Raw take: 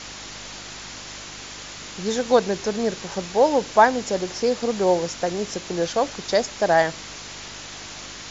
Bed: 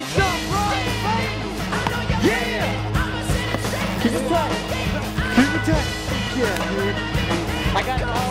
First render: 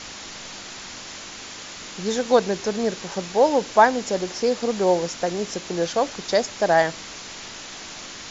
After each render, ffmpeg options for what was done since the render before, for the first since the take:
-af "bandreject=f=50:t=h:w=4,bandreject=f=100:t=h:w=4,bandreject=f=150:t=h:w=4"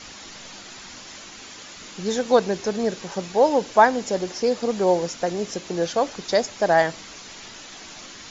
-af "afftdn=nr=6:nf=-38"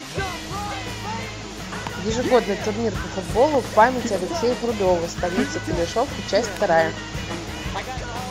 -filter_complex "[1:a]volume=-8dB[a];[0:a][a]amix=inputs=2:normalize=0"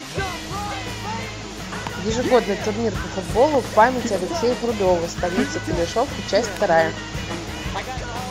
-af "volume=1dB,alimiter=limit=-3dB:level=0:latency=1"

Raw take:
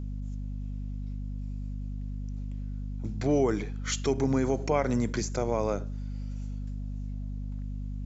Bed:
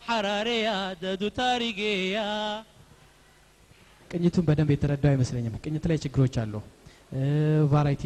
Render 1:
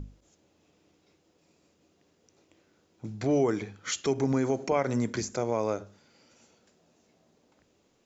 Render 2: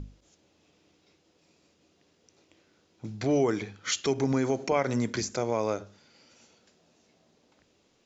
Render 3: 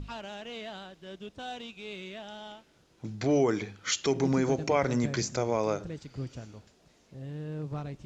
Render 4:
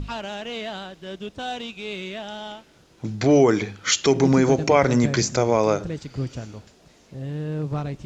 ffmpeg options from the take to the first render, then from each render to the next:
-af "bandreject=f=50:t=h:w=6,bandreject=f=100:t=h:w=6,bandreject=f=150:t=h:w=6,bandreject=f=200:t=h:w=6,bandreject=f=250:t=h:w=6"
-af "lowpass=5k,highshelf=f=3.2k:g=10"
-filter_complex "[1:a]volume=-14.5dB[a];[0:a][a]amix=inputs=2:normalize=0"
-af "volume=9dB"

